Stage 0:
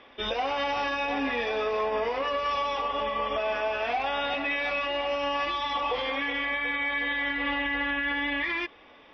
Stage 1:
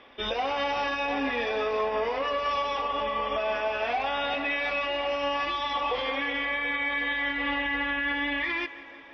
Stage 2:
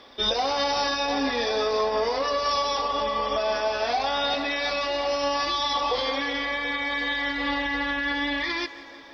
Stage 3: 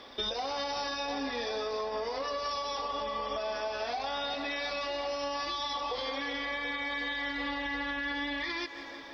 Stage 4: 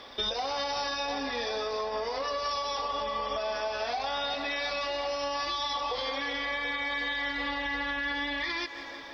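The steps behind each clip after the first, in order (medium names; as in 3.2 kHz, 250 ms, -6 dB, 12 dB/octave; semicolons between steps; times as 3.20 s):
tape echo 166 ms, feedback 79%, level -15 dB, low-pass 4 kHz
resonant high shelf 3.5 kHz +8.5 dB, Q 3; trim +3.5 dB
compression 6:1, threshold -32 dBFS, peak gain reduction 11 dB
peaking EQ 290 Hz -4 dB 1.2 oct; trim +3 dB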